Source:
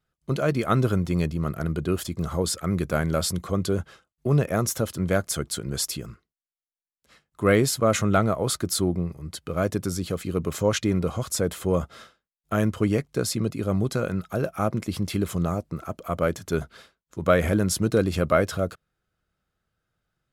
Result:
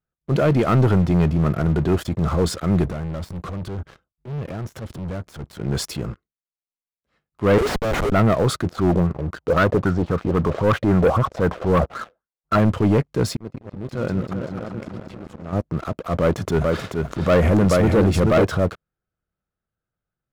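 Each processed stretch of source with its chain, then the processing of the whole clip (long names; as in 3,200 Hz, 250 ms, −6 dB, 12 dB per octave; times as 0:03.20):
0:02.86–0:05.60: low-shelf EQ 190 Hz +8.5 dB + downward compressor 8 to 1, threshold −31 dBFS + gain into a clipping stage and back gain 35.5 dB
0:07.58–0:08.12: Butterworth high-pass 390 Hz 96 dB per octave + downward compressor 8 to 1, threshold −24 dBFS + comparator with hysteresis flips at −30.5 dBFS
0:08.70–0:12.59: head-to-tape spacing loss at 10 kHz 31 dB + auto-filter bell 3.8 Hz 490–1,500 Hz +17 dB
0:13.31–0:15.53: low-pass filter 8,900 Hz + volume swells 721 ms + echo whose low-pass opens from repeat to repeat 193 ms, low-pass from 400 Hz, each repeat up 2 octaves, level −6 dB
0:16.21–0:18.45: notch filter 1,600 Hz, Q 15 + upward compression, threshold −26 dBFS + single-tap delay 433 ms −5.5 dB
whole clip: low-pass filter 1,400 Hz 6 dB per octave; transient designer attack −8 dB, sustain 0 dB; leveller curve on the samples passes 3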